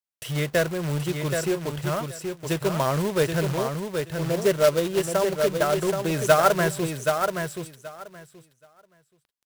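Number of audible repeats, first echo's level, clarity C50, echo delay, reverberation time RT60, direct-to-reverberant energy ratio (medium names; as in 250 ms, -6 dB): 2, -5.5 dB, no reverb, 777 ms, no reverb, no reverb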